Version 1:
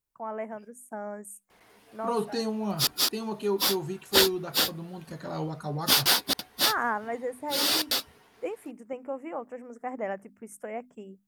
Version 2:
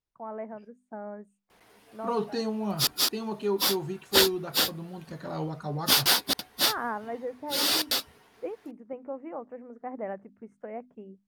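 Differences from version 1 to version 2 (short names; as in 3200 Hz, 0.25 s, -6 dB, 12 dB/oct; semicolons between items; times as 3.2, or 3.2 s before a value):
first voice: add tape spacing loss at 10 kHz 39 dB; second voice: add air absorption 66 m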